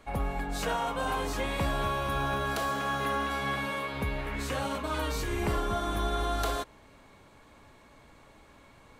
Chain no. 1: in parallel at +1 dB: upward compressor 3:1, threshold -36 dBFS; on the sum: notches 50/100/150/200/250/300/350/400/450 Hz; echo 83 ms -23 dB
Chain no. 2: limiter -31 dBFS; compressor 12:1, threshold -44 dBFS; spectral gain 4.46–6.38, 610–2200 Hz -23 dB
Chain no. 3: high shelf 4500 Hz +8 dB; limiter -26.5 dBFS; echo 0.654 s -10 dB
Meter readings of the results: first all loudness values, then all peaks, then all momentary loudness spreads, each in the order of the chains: -25.0, -49.5, -35.0 LUFS; -12.0, -35.0, -24.0 dBFS; 20, 9, 21 LU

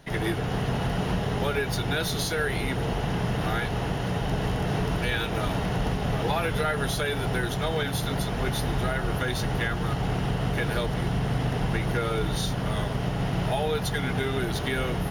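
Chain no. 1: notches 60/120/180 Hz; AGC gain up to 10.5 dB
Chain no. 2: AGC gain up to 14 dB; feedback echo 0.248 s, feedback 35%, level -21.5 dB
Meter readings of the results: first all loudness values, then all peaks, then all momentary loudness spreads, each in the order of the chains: -18.5, -16.0 LUFS; -4.0, -2.0 dBFS; 2, 2 LU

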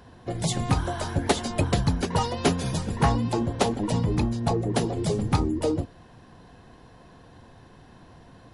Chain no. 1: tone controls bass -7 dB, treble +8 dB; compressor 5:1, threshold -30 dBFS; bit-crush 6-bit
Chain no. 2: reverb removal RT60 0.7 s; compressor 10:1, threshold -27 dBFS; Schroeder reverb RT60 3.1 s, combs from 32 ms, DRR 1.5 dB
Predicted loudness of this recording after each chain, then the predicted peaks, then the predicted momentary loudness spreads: -32.5, -31.5 LUFS; -16.0, -14.5 dBFS; 2, 20 LU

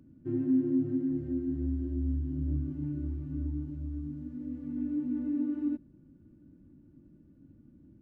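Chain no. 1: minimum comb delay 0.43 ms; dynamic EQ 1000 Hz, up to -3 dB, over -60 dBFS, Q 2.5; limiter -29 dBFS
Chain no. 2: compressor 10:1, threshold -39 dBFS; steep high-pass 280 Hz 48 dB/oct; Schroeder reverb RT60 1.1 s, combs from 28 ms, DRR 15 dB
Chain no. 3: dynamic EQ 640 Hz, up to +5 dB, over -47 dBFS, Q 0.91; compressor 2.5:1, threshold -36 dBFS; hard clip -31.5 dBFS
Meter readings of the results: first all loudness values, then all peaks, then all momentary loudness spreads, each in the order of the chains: -37.5, -48.0, -38.5 LUFS; -29.0, -34.5, -31.5 dBFS; 4, 18, 21 LU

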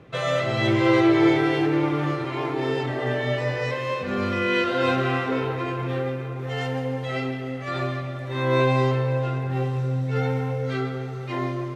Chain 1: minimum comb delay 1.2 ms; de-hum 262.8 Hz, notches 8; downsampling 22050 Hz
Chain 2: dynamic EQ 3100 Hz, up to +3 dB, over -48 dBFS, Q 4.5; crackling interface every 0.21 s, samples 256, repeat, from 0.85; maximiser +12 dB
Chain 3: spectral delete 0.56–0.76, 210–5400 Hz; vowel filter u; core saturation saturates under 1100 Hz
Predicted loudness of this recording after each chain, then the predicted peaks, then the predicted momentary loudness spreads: -26.5, -13.0, -37.5 LUFS; -9.5, -1.0, -17.5 dBFS; 10, 8, 13 LU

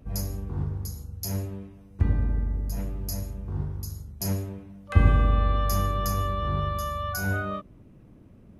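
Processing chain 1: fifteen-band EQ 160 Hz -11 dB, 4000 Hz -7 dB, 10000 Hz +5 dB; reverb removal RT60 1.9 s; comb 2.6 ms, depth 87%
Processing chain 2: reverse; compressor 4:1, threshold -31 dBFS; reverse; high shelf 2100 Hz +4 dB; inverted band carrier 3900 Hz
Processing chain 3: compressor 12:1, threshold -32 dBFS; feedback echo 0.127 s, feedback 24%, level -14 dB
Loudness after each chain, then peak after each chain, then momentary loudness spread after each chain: -29.0, -29.5, -38.0 LUFS; -3.5, -17.0, -20.5 dBFS; 15, 11, 7 LU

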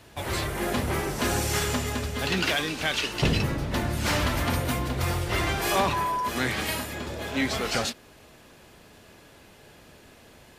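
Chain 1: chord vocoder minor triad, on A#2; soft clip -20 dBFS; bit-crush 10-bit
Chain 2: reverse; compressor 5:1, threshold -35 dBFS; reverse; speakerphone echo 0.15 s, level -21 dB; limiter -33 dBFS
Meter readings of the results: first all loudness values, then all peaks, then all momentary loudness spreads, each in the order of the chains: -31.0, -42.5 LUFS; -20.0, -33.0 dBFS; 6, 11 LU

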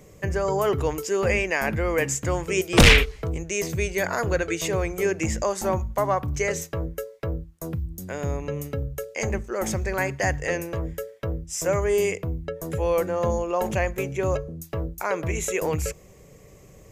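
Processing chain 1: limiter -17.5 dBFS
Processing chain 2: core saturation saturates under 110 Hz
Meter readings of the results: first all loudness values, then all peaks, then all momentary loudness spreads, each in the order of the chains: -28.5, -26.0 LUFS; -17.5, -8.0 dBFS; 7, 10 LU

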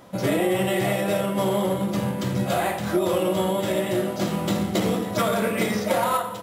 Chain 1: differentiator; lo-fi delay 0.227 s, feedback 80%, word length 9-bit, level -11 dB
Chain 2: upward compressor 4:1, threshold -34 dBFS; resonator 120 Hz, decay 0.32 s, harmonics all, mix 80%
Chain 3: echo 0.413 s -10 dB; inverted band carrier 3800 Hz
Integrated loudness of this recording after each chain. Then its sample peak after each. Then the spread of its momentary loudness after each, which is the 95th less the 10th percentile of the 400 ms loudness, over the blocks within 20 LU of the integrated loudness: -35.0, -31.5, -20.0 LUFS; -17.0, -18.0, -9.5 dBFS; 4, 5, 3 LU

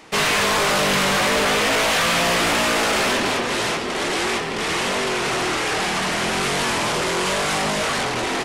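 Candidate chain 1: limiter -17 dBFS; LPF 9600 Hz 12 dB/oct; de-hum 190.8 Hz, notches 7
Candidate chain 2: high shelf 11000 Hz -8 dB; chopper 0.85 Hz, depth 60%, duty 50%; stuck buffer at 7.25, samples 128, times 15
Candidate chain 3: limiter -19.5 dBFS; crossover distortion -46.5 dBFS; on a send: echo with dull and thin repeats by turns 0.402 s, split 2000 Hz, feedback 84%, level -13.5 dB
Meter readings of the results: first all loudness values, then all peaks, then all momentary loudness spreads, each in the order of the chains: -21.5, -22.0, -23.5 LUFS; -15.0, -13.5, -17.0 dBFS; 3, 11, 2 LU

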